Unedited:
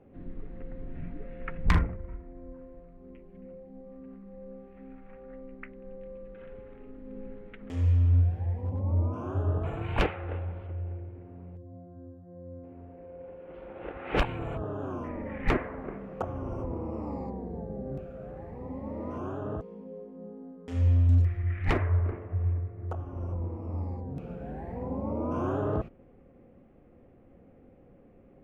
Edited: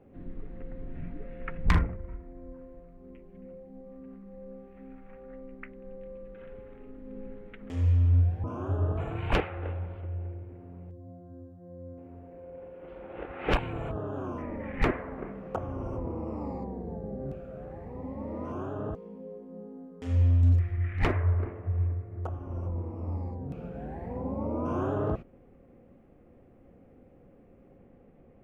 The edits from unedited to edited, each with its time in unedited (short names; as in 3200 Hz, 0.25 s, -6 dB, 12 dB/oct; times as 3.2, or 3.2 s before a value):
8.44–9.1 cut